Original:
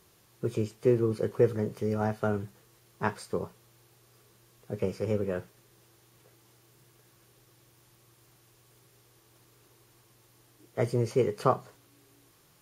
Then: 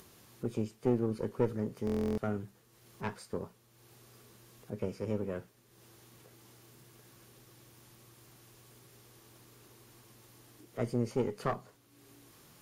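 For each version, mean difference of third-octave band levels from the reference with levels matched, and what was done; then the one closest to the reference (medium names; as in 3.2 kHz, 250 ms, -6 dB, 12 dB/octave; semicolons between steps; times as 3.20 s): 2.0 dB: single-diode clipper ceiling -25 dBFS; peaking EQ 240 Hz +9.5 dB 0.31 oct; upward compressor, threshold -43 dBFS; buffer glitch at 1.85 s, samples 1024, times 13; trim -5.5 dB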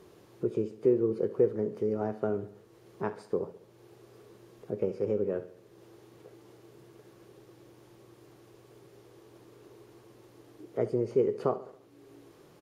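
6.5 dB: treble shelf 7 kHz -10.5 dB; compression 1.5:1, threshold -59 dBFS, peak gain reduction 14.5 dB; peaking EQ 380 Hz +13 dB 2 oct; on a send: feedback delay 69 ms, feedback 50%, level -15 dB; on the sum: trim +1 dB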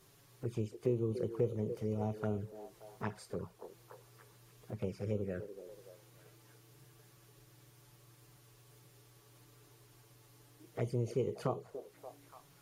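3.5 dB: bass shelf 120 Hz +5 dB; compression 1.5:1, threshold -48 dBFS, peak gain reduction 11 dB; touch-sensitive flanger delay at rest 8.4 ms, full sweep at -32 dBFS; repeats whose band climbs or falls 289 ms, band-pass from 410 Hz, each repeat 0.7 oct, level -8.5 dB; trim +1 dB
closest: first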